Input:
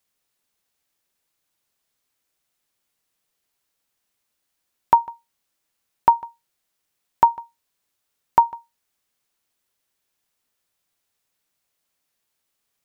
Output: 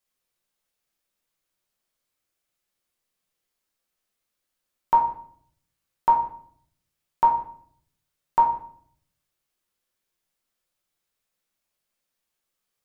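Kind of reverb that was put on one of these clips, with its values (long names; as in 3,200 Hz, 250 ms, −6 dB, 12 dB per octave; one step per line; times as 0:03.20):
rectangular room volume 86 cubic metres, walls mixed, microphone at 0.92 metres
level −8 dB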